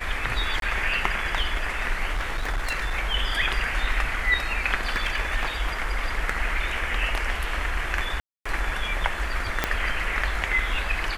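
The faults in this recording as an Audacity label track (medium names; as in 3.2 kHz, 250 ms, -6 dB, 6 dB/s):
0.600000	0.620000	dropout 22 ms
2.120000	2.940000	clipped -22 dBFS
4.850000	5.860000	clipped -18 dBFS
8.200000	8.460000	dropout 255 ms
9.640000	9.640000	pop -6 dBFS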